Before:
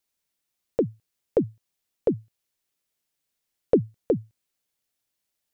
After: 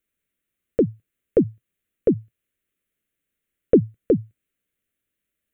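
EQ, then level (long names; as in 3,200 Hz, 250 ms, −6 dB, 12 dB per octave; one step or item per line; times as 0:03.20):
parametric band 130 Hz −9 dB 0.23 octaves
high-shelf EQ 2,100 Hz −8.5 dB
phaser with its sweep stopped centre 2,100 Hz, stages 4
+8.0 dB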